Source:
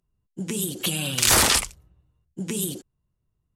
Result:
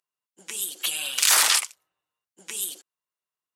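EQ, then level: high-pass 1 kHz 12 dB/octave; 0.0 dB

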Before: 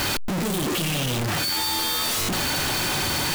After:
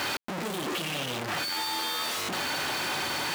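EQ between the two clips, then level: high-pass 540 Hz 6 dB/octave; treble shelf 4.6 kHz -11 dB; -1.5 dB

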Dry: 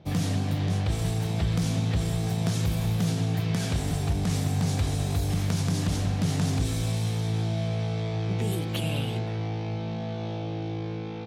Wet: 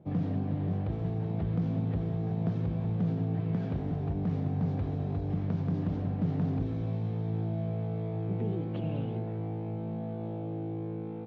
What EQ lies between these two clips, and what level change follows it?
band-pass filter 240 Hz, Q 0.56; distance through air 190 m; bass shelf 180 Hz -3.5 dB; 0.0 dB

